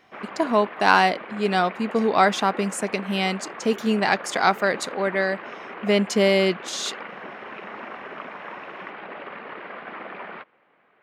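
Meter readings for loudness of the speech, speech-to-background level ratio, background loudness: -22.5 LUFS, 14.5 dB, -37.0 LUFS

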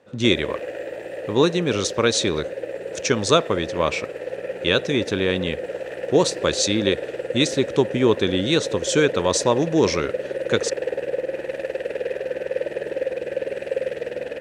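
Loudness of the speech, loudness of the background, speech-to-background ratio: -22.0 LUFS, -29.5 LUFS, 7.5 dB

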